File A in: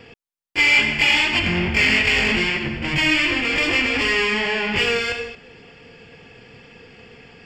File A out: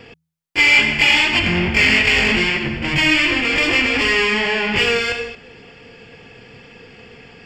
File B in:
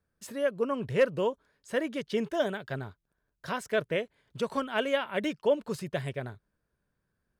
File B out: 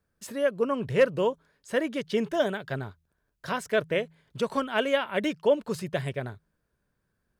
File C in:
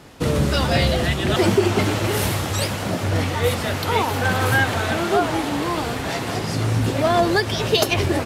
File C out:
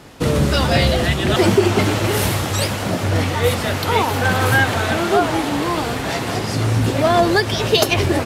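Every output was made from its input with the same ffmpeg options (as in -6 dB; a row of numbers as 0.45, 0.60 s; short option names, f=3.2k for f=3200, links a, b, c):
-af "bandreject=f=80.66:t=h:w=4,bandreject=f=161.32:t=h:w=4,volume=3dB"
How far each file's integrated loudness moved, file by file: +3.0, +3.0, +3.0 LU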